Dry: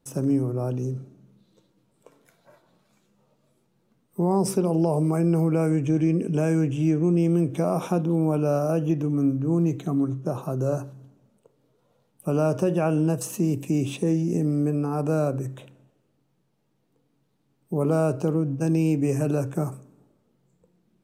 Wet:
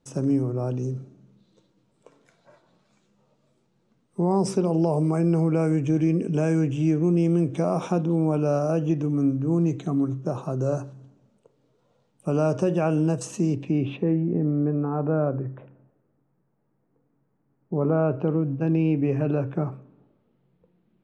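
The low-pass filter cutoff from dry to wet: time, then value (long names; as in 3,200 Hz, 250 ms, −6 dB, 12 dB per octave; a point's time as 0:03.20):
low-pass filter 24 dB per octave
0:13.43 7,900 Hz
0:13.66 4,100 Hz
0:14.33 1,800 Hz
0:17.81 1,800 Hz
0:18.38 3,400 Hz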